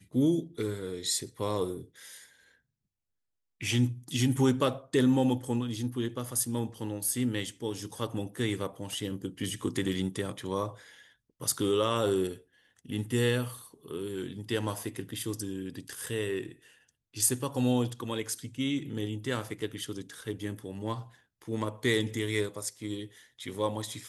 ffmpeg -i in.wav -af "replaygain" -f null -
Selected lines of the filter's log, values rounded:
track_gain = +10.7 dB
track_peak = 0.197